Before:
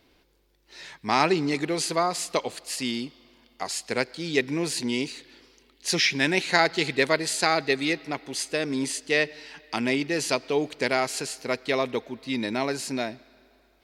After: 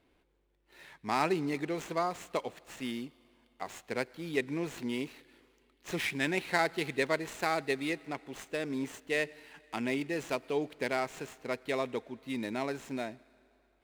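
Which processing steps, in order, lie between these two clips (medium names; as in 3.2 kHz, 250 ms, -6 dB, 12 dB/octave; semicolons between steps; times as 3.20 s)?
median filter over 9 samples; treble shelf 10 kHz -3.5 dB; trim -7 dB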